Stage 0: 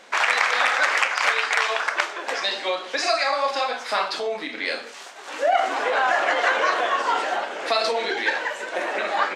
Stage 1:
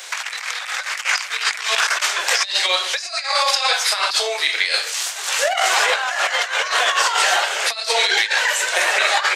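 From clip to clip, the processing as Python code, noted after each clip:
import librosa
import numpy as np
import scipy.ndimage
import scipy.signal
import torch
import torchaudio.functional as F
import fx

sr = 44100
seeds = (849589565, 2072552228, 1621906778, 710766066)

y = scipy.signal.sosfilt(scipy.signal.butter(12, 350.0, 'highpass', fs=sr, output='sos'), x)
y = fx.tilt_eq(y, sr, slope=5.5)
y = fx.over_compress(y, sr, threshold_db=-22.0, ratio=-0.5)
y = y * librosa.db_to_amplitude(3.0)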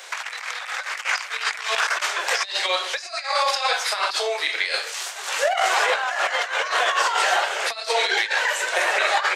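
y = fx.high_shelf(x, sr, hz=2200.0, db=-8.5)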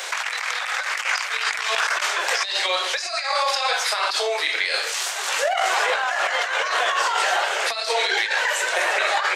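y = fx.env_flatten(x, sr, amount_pct=50)
y = y * librosa.db_to_amplitude(-2.0)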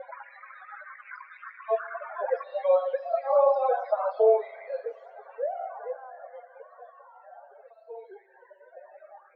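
y = fx.spec_topn(x, sr, count=16)
y = fx.filter_sweep_lowpass(y, sr, from_hz=600.0, to_hz=190.0, start_s=4.03, end_s=7.05, q=2.8)
y = fx.rev_fdn(y, sr, rt60_s=3.3, lf_ratio=1.0, hf_ratio=0.9, size_ms=26.0, drr_db=15.5)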